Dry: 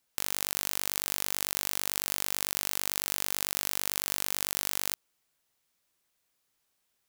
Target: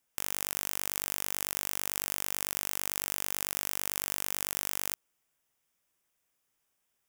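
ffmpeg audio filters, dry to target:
ffmpeg -i in.wav -af "equalizer=frequency=4200:width_type=o:width=0.26:gain=-12,volume=-1.5dB" out.wav

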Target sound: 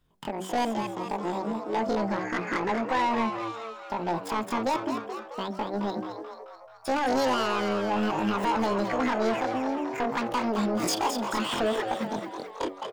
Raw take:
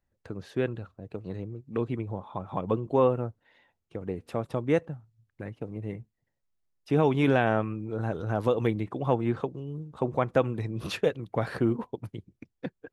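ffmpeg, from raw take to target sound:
ffmpeg -i in.wav -filter_complex "[0:a]bandreject=frequency=50:width_type=h:width=6,bandreject=frequency=100:width_type=h:width=6,bandreject=frequency=150:width_type=h:width=6,bandreject=frequency=200:width_type=h:width=6,bandreject=frequency=250:width_type=h:width=6,bandreject=frequency=300:width_type=h:width=6,bandreject=frequency=350:width_type=h:width=6,bandreject=frequency=400:width_type=h:width=6,alimiter=limit=-20dB:level=0:latency=1:release=123,asoftclip=type=tanh:threshold=-30.5dB,asetrate=83250,aresample=44100,atempo=0.529732,asplit=2[link_01][link_02];[link_02]asplit=7[link_03][link_04][link_05][link_06][link_07][link_08][link_09];[link_03]adelay=217,afreqshift=110,volume=-7.5dB[link_10];[link_04]adelay=434,afreqshift=220,volume=-12.5dB[link_11];[link_05]adelay=651,afreqshift=330,volume=-17.6dB[link_12];[link_06]adelay=868,afreqshift=440,volume=-22.6dB[link_13];[link_07]adelay=1085,afreqshift=550,volume=-27.6dB[link_14];[link_08]adelay=1302,afreqshift=660,volume=-32.7dB[link_15];[link_09]adelay=1519,afreqshift=770,volume=-37.7dB[link_16];[link_10][link_11][link_12][link_13][link_14][link_15][link_16]amix=inputs=7:normalize=0[link_17];[link_01][link_17]amix=inputs=2:normalize=0,volume=9dB" out.wav

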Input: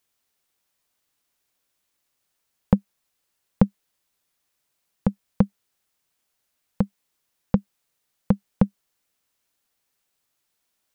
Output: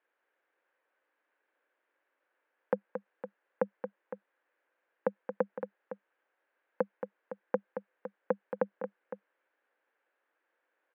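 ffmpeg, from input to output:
ffmpeg -i in.wav -af "alimiter=limit=-12dB:level=0:latency=1:release=47,highpass=frequency=320:width=0.5412,highpass=frequency=320:width=1.3066,equalizer=frequency=320:width_type=q:width=4:gain=4,equalizer=frequency=520:width_type=q:width=4:gain=9,equalizer=frequency=900:width_type=q:width=4:gain=3,equalizer=frequency=1600:width_type=q:width=4:gain=9,lowpass=frequency=2300:width=0.5412,lowpass=frequency=2300:width=1.3066,aecho=1:1:225|510:0.376|0.251" out.wav

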